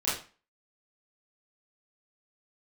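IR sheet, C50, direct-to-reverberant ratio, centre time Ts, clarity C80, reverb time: 4.5 dB, -10.5 dB, 44 ms, 10.0 dB, 0.35 s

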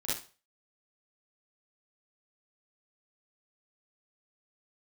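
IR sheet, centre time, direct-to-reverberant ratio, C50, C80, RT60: 57 ms, -9.5 dB, -2.0 dB, 10.0 dB, 0.35 s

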